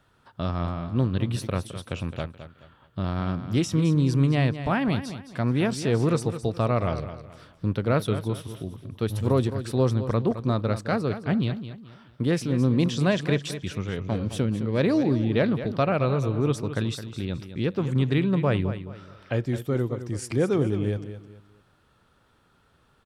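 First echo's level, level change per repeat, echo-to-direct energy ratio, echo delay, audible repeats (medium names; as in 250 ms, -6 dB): -11.5 dB, -10.0 dB, -11.0 dB, 214 ms, 3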